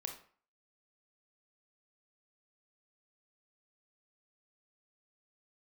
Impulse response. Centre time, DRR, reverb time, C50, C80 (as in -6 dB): 18 ms, 3.5 dB, 0.45 s, 7.5 dB, 12.5 dB